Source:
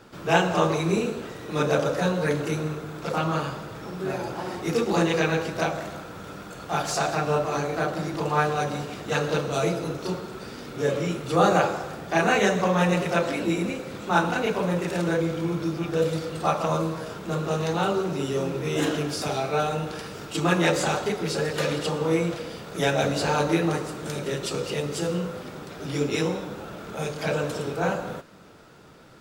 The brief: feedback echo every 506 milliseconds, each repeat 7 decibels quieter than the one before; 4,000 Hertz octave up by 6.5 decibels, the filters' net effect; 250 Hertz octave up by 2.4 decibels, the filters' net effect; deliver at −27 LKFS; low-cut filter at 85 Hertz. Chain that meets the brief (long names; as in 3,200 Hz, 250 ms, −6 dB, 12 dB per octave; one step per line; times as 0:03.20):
high-pass filter 85 Hz
parametric band 250 Hz +4 dB
parametric band 4,000 Hz +8 dB
repeating echo 506 ms, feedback 45%, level −7 dB
level −3.5 dB